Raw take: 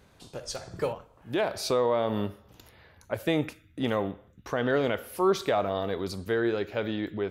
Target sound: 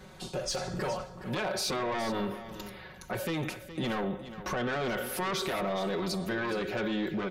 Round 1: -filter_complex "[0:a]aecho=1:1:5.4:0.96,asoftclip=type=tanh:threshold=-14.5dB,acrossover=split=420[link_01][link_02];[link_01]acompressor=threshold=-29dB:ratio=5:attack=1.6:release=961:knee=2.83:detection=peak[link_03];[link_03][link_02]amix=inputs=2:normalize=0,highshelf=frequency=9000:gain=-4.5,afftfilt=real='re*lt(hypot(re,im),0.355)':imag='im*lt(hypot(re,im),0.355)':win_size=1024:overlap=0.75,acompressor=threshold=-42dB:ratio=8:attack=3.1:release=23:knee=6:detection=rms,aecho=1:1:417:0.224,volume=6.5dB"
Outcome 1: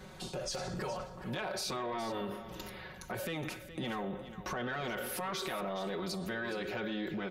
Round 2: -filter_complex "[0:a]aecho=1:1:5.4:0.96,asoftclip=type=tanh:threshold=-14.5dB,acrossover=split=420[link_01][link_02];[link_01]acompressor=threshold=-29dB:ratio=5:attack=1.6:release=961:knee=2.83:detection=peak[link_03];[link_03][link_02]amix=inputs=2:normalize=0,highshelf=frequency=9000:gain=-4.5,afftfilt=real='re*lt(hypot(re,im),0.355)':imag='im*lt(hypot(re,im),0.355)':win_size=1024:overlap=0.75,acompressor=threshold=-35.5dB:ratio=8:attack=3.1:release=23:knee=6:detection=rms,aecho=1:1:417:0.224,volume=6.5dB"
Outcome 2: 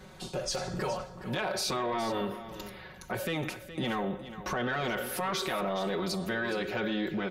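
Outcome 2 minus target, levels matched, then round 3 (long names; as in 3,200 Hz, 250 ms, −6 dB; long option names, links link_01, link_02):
soft clipping: distortion −9 dB
-filter_complex "[0:a]aecho=1:1:5.4:0.96,asoftclip=type=tanh:threshold=-23dB,acrossover=split=420[link_01][link_02];[link_01]acompressor=threshold=-29dB:ratio=5:attack=1.6:release=961:knee=2.83:detection=peak[link_03];[link_03][link_02]amix=inputs=2:normalize=0,highshelf=frequency=9000:gain=-4.5,afftfilt=real='re*lt(hypot(re,im),0.355)':imag='im*lt(hypot(re,im),0.355)':win_size=1024:overlap=0.75,acompressor=threshold=-35.5dB:ratio=8:attack=3.1:release=23:knee=6:detection=rms,aecho=1:1:417:0.224,volume=6.5dB"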